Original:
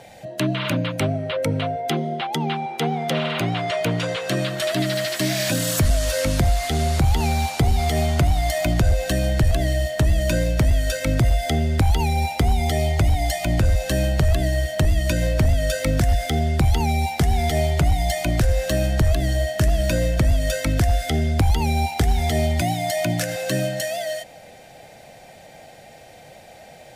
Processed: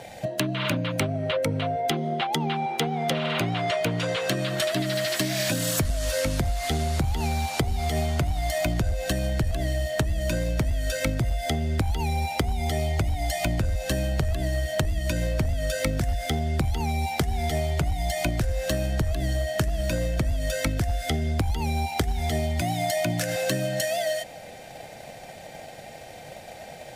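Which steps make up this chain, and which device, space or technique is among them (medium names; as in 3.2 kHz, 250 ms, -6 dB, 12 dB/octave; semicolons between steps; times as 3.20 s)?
drum-bus smash (transient shaper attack +7 dB, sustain 0 dB; compression, threshold -24 dBFS, peak gain reduction 14.5 dB; saturation -14 dBFS, distortion -27 dB); trim +2 dB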